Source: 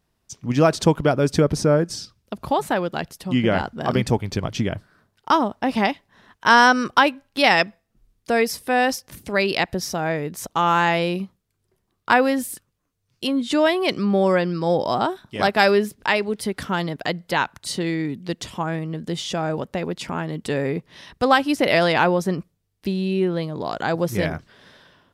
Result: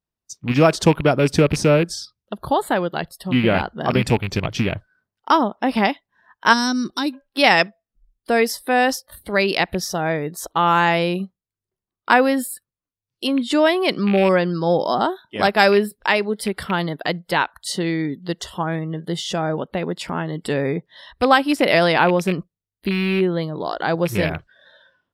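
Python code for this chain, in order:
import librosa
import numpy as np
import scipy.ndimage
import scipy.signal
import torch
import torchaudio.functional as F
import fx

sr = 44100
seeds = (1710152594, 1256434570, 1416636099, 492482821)

y = fx.rattle_buzz(x, sr, strikes_db=-24.0, level_db=-18.0)
y = fx.noise_reduce_blind(y, sr, reduce_db=20)
y = fx.spec_box(y, sr, start_s=6.53, length_s=0.6, low_hz=400.0, high_hz=3500.0, gain_db=-15)
y = y * 10.0 ** (2.0 / 20.0)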